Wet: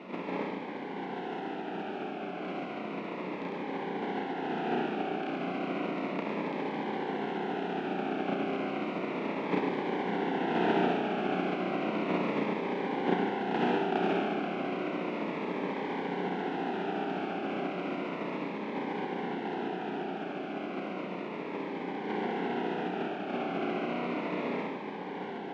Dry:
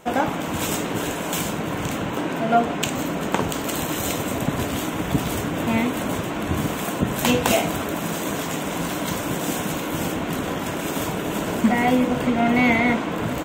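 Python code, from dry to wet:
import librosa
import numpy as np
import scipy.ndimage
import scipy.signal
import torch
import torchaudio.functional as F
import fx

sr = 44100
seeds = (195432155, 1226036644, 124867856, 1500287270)

p1 = fx.spec_flatten(x, sr, power=0.11)
p2 = fx.doppler_pass(p1, sr, speed_mps=9, closest_m=9.4, pass_at_s=6.01)
p3 = fx.over_compress(p2, sr, threshold_db=-36.0, ratio=-1.0)
p4 = p2 + (p3 * 10.0 ** (1.0 / 20.0))
p5 = fx.stretch_grains(p4, sr, factor=1.9, grain_ms=139.0)
p6 = fx.quant_dither(p5, sr, seeds[0], bits=6, dither='triangular')
p7 = fx.cabinet(p6, sr, low_hz=180.0, low_slope=24, high_hz=2100.0, hz=(190.0, 280.0, 390.0, 770.0, 1200.0, 1800.0), db=(9, 7, 9, 8, -6, -7))
p8 = p7 + fx.echo_single(p7, sr, ms=104, db=-6.0, dry=0)
y = fx.notch_cascade(p8, sr, direction='falling', hz=0.33)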